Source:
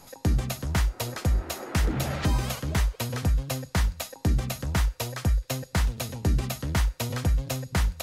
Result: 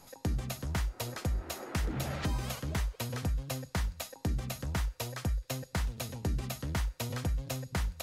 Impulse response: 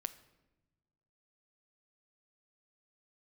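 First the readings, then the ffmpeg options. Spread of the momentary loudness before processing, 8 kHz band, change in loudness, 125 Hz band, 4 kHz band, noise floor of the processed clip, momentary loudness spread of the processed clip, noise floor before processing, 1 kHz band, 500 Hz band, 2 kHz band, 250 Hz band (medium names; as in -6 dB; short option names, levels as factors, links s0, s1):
3 LU, -6.5 dB, -7.5 dB, -8.0 dB, -6.5 dB, -57 dBFS, 2 LU, -52 dBFS, -6.5 dB, -6.5 dB, -7.0 dB, -7.0 dB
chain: -af "acompressor=threshold=0.0562:ratio=2,volume=0.531"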